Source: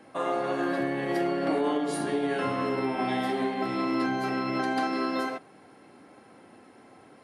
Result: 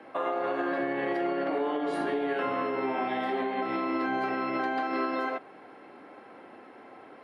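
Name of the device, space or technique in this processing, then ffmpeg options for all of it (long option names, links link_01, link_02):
DJ mixer with the lows and highs turned down: -filter_complex "[0:a]acrossover=split=280 3400:gain=0.224 1 0.112[link_01][link_02][link_03];[link_01][link_02][link_03]amix=inputs=3:normalize=0,alimiter=level_in=2.5dB:limit=-24dB:level=0:latency=1:release=192,volume=-2.5dB,volume=5.5dB"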